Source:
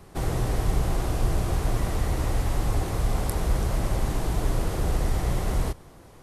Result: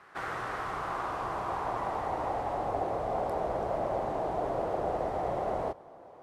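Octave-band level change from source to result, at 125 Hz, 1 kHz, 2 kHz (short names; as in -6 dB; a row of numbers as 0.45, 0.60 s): -18.0, +4.5, -2.5 dB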